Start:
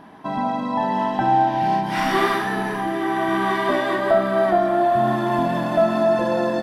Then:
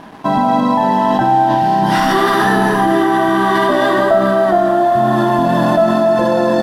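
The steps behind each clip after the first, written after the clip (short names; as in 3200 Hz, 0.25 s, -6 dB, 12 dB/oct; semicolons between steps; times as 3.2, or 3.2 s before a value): bell 2300 Hz -12.5 dB 0.29 oct; in parallel at -1 dB: negative-ratio compressor -24 dBFS, ratio -0.5; on the sum: crossover distortion -43.5 dBFS; gain +4.5 dB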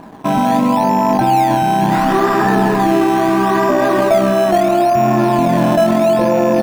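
rattling part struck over -30 dBFS, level -15 dBFS; LPF 1200 Hz 6 dB/oct; in parallel at -10 dB: decimation with a swept rate 13×, swing 100% 0.74 Hz; on the sum: gain -1 dB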